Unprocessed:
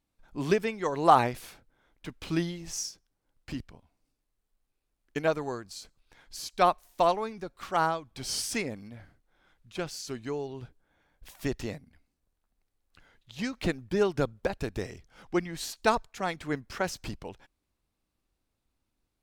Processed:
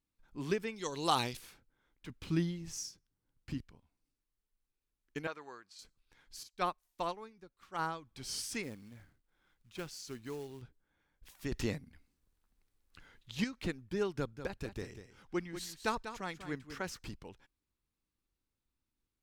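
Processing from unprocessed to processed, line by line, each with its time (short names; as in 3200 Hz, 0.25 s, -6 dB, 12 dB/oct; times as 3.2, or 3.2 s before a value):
0.76–1.37 resonant high shelf 2500 Hz +10.5 dB, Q 1.5
2.09–3.58 bell 120 Hz +8 dB 2.4 oct
5.27–5.79 band-pass 1800 Hz, Q 0.6
6.43–7.79 upward expander, over -42 dBFS
8.63–10.62 short-mantissa float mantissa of 2-bit
11.52–13.44 gain +9 dB
14.17–16.99 echo 0.194 s -10.5 dB
whole clip: bell 660 Hz -7.5 dB 0.6 oct; gain -7.5 dB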